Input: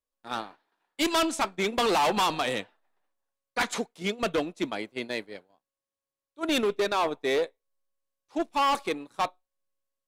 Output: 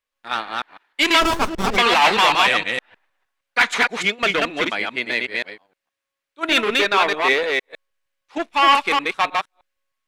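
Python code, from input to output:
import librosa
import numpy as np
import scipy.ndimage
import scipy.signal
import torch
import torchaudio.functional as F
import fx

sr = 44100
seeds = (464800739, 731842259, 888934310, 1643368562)

y = fx.reverse_delay(x, sr, ms=155, wet_db=-2.0)
y = fx.peak_eq(y, sr, hz=2100.0, db=14.5, octaves=2.2)
y = fx.running_max(y, sr, window=17, at=(1.2, 1.76), fade=0.02)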